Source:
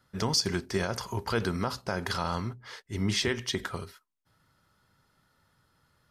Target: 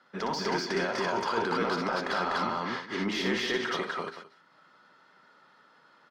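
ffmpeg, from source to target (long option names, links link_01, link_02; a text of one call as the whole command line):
ffmpeg -i in.wav -filter_complex "[0:a]highpass=frequency=180:width=0.5412,highpass=frequency=180:width=1.3066,asplit=2[link_01][link_02];[link_02]aecho=0:1:180:0.168[link_03];[link_01][link_03]amix=inputs=2:normalize=0,alimiter=level_in=1dB:limit=-24dB:level=0:latency=1:release=62,volume=-1dB,lowpass=5700,asplit=2[link_04][link_05];[link_05]highpass=frequency=720:poles=1,volume=16dB,asoftclip=type=tanh:threshold=-18dB[link_06];[link_04][link_06]amix=inputs=2:normalize=0,lowpass=frequency=1800:poles=1,volume=-6dB,asplit=2[link_07][link_08];[link_08]aecho=0:1:61.22|247.8:0.562|1[link_09];[link_07][link_09]amix=inputs=2:normalize=0" out.wav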